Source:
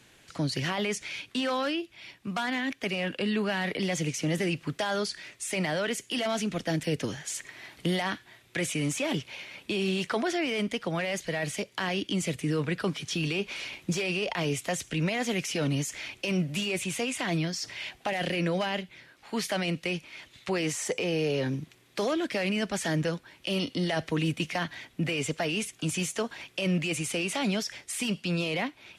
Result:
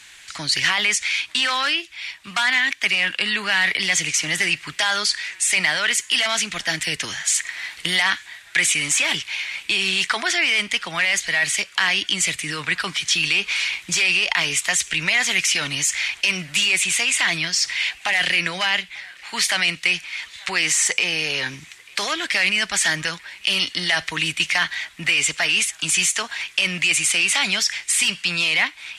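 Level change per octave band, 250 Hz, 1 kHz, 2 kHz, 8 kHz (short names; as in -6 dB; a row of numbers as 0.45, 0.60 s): -5.5, +6.5, +15.0, +15.5 dB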